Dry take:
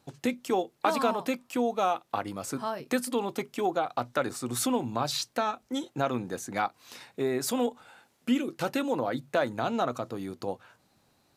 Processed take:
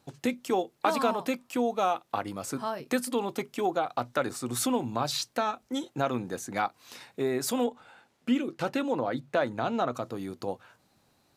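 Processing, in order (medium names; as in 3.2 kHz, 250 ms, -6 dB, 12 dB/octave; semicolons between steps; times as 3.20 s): 7.64–9.95 s: treble shelf 7.8 kHz -12 dB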